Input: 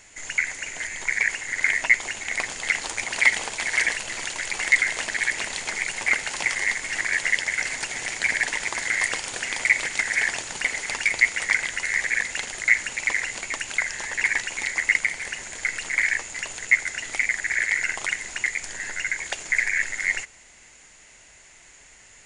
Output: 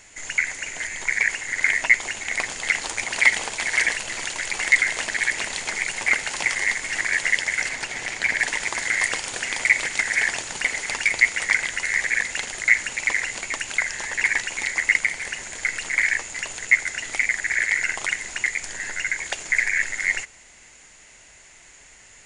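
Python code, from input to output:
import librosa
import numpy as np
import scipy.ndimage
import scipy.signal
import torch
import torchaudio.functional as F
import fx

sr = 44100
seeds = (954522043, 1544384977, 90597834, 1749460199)

y = fx.high_shelf(x, sr, hz=8100.0, db=-10.5, at=(7.69, 8.39))
y = F.gain(torch.from_numpy(y), 1.5).numpy()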